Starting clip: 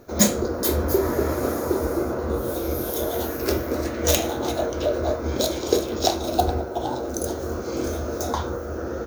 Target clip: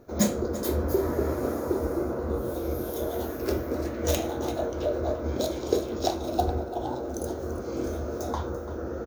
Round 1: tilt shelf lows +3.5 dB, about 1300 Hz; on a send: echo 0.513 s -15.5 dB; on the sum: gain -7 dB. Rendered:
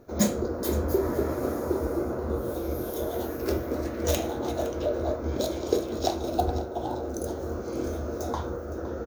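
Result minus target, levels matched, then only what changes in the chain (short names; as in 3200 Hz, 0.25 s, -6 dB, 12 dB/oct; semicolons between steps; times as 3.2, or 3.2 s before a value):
echo 0.174 s late
change: echo 0.339 s -15.5 dB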